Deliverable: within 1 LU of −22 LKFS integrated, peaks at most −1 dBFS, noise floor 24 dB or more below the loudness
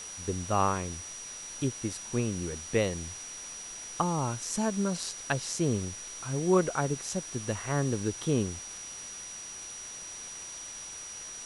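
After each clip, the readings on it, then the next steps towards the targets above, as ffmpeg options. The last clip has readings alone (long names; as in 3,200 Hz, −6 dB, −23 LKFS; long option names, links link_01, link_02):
interfering tone 5,800 Hz; level of the tone −41 dBFS; background noise floor −43 dBFS; target noise floor −57 dBFS; integrated loudness −32.5 LKFS; sample peak −12.5 dBFS; target loudness −22.0 LKFS
→ -af "bandreject=frequency=5800:width=30"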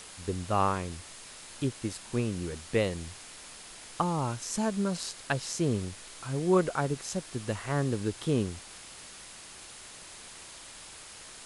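interfering tone none found; background noise floor −48 dBFS; target noise floor −56 dBFS
→ -af "afftdn=noise_reduction=8:noise_floor=-48"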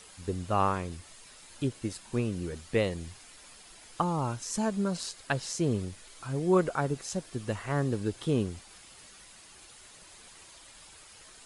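background noise floor −53 dBFS; target noise floor −56 dBFS
→ -af "afftdn=noise_reduction=6:noise_floor=-53"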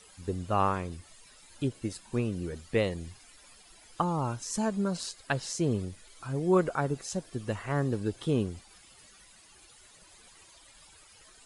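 background noise floor −57 dBFS; integrated loudness −31.5 LKFS; sample peak −13.0 dBFS; target loudness −22.0 LKFS
→ -af "volume=9.5dB"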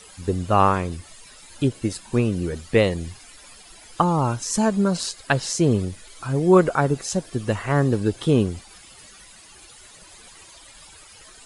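integrated loudness −22.0 LKFS; sample peak −3.5 dBFS; background noise floor −47 dBFS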